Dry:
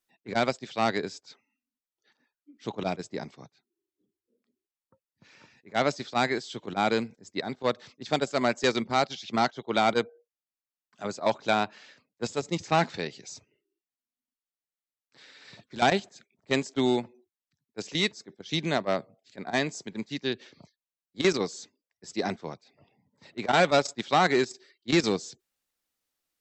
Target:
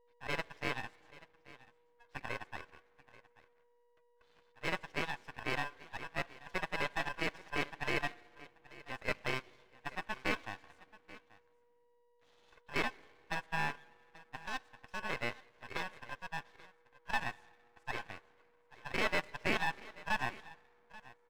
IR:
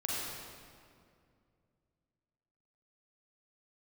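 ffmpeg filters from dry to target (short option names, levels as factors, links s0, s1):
-filter_complex "[0:a]asetrate=54684,aresample=44100,lowpass=1800,aeval=exprs='val(0)*sin(2*PI*1300*n/s)':c=same,aeval=exprs='val(0)+0.001*sin(2*PI*480*n/s)':c=same,aecho=1:1:834:0.106,asplit=2[s0][s1];[1:a]atrim=start_sample=2205[s2];[s1][s2]afir=irnorm=-1:irlink=0,volume=0.0501[s3];[s0][s3]amix=inputs=2:normalize=0,aeval=exprs='max(val(0),0)':c=same,volume=0.631"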